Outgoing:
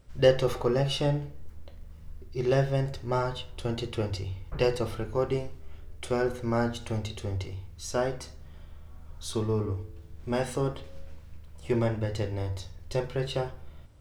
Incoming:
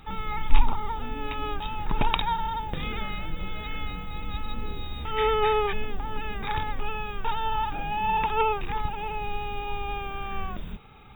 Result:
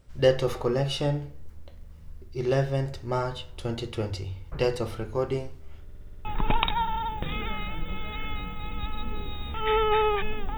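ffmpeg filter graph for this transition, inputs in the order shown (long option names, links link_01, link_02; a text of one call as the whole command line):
ffmpeg -i cue0.wav -i cue1.wav -filter_complex "[0:a]apad=whole_dur=10.57,atrim=end=10.57,asplit=7[link_01][link_02][link_03][link_04][link_05][link_06][link_07];[link_01]atrim=end=5.892[link_08];[link_02]atrim=start=5.828:end=5.892[link_09];[link_03]atrim=start=5.828:end=5.892[link_10];[link_04]atrim=start=5.828:end=5.892[link_11];[link_05]atrim=start=5.828:end=5.892[link_12];[link_06]atrim=start=5.828:end=5.892[link_13];[link_07]atrim=start=5.828:end=5.892[link_14];[1:a]atrim=start=1.758:end=6.08[link_15];[link_08][link_09]acrossfade=duration=0.004:curve1=hsin:curve2=hsin[link_16];[link_16][link_10]acrossfade=duration=0.004:curve1=hsin:curve2=hsin[link_17];[link_17][link_11]acrossfade=duration=0.004:curve1=hsin:curve2=hsin[link_18];[link_18][link_12]acrossfade=duration=0.004:curve1=hsin:curve2=hsin[link_19];[link_19][link_13]acrossfade=duration=0.004:curve1=hsin:curve2=hsin[link_20];[link_20][link_14]acrossfade=duration=0.004:curve1=hsin:curve2=hsin[link_21];[link_21][link_15]acrossfade=duration=0.004:curve1=hsin:curve2=hsin" out.wav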